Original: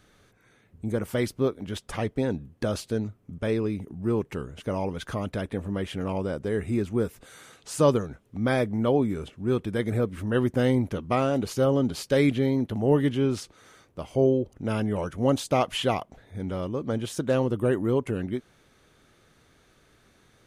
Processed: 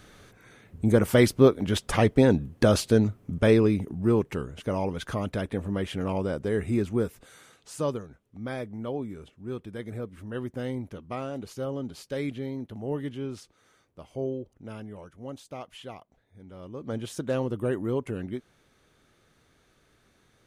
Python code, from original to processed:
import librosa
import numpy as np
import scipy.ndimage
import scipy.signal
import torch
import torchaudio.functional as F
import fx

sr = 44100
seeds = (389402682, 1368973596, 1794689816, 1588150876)

y = fx.gain(x, sr, db=fx.line((3.43, 7.5), (4.53, 0.5), (6.88, 0.5), (8.05, -10.0), (14.4, -10.0), (15.16, -16.5), (16.47, -16.5), (16.94, -4.0)))